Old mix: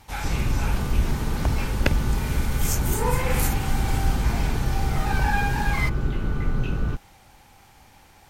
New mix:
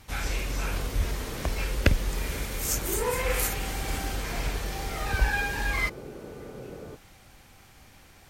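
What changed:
speech: add peaking EQ 860 Hz -10.5 dB 0.3 oct; background: add band-pass filter 510 Hz, Q 2.6

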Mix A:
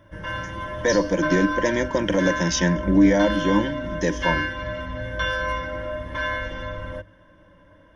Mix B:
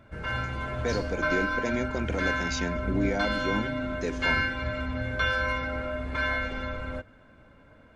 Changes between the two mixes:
speech -8.5 dB; second sound +7.0 dB; master: remove rippled EQ curve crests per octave 1.2, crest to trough 13 dB

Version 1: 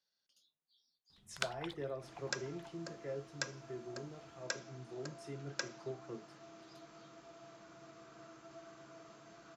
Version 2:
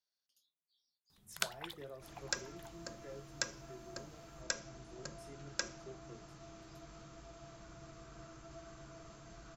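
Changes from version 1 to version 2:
speech -8.0 dB; second sound: remove high-pass 220 Hz 12 dB/octave; master: remove distance through air 66 m

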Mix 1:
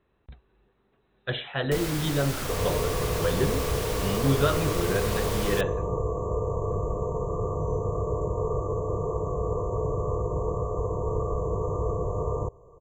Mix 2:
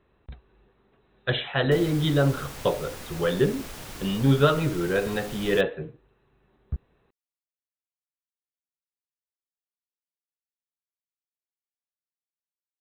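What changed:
speech +4.5 dB; first sound -7.0 dB; second sound: muted

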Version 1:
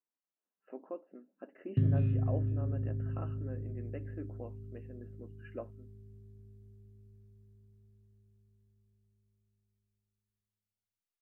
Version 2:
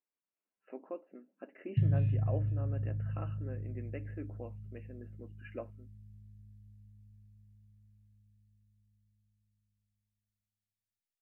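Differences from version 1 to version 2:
speech: add peaking EQ 2.3 kHz +10 dB 0.49 oct; background: add brick-wall FIR band-stop 230–1600 Hz

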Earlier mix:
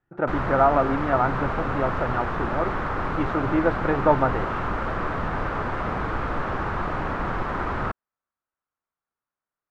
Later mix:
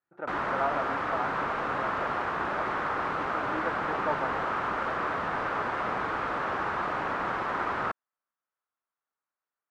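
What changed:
speech -10.0 dB; master: add high-pass 540 Hz 6 dB/octave

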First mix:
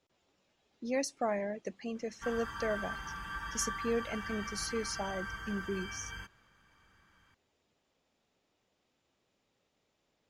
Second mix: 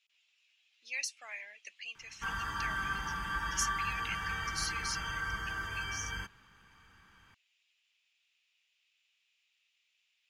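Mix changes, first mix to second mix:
speech: add resonant high-pass 2.6 kHz, resonance Q 3.8; background +5.0 dB

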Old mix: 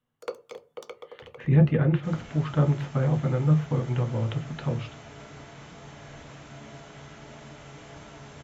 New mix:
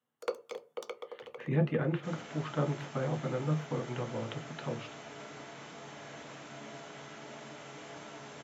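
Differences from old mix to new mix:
speech -4.0 dB; master: add high-pass 220 Hz 12 dB/octave

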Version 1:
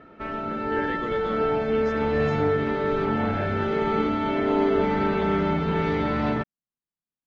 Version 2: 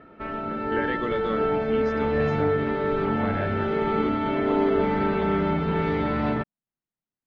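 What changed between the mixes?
speech +5.0 dB; master: add distance through air 110 m

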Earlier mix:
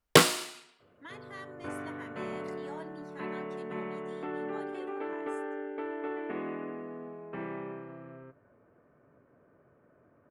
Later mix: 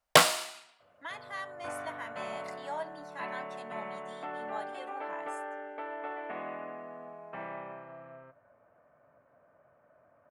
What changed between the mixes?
speech +5.5 dB; master: add resonant low shelf 500 Hz -7 dB, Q 3

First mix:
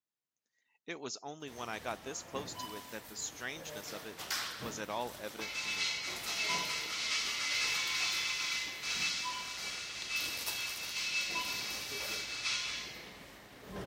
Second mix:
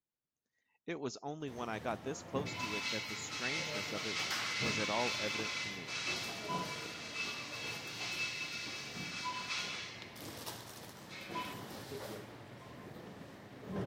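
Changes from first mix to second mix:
first sound: add high-pass 93 Hz 24 dB/octave; second sound: entry -2.95 s; master: add tilt EQ -2.5 dB/octave

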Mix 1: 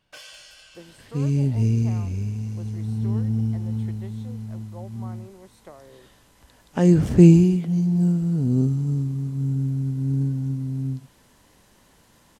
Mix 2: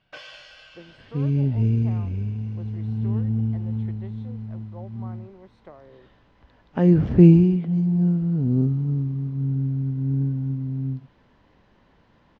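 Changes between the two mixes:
first sound +6.0 dB; second sound: add distance through air 82 m; master: add distance through air 240 m

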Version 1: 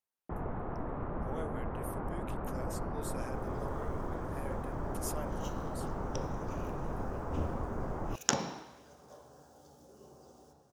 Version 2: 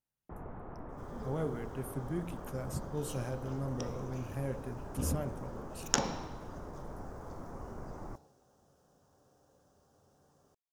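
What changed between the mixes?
speech: remove high-pass 540 Hz 12 dB/octave; first sound -7.5 dB; second sound: entry -2.35 s

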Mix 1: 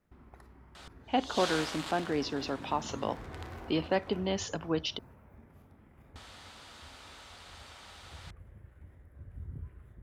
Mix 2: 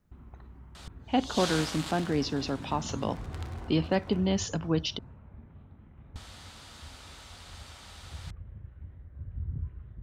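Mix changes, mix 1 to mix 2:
first sound: add rippled Chebyshev low-pass 4.1 kHz, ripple 3 dB; master: add tone controls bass +11 dB, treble +5 dB

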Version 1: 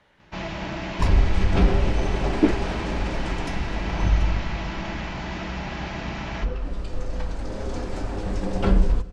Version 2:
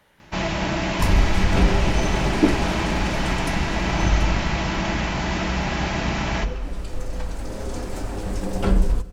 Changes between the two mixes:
speech: send on; first sound +7.0 dB; master: remove low-pass 5.2 kHz 12 dB/octave

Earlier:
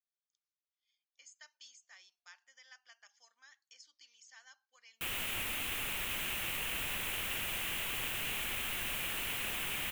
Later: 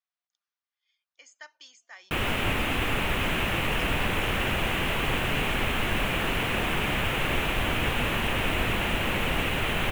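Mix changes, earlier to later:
background: entry -2.90 s; master: remove pre-emphasis filter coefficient 0.9

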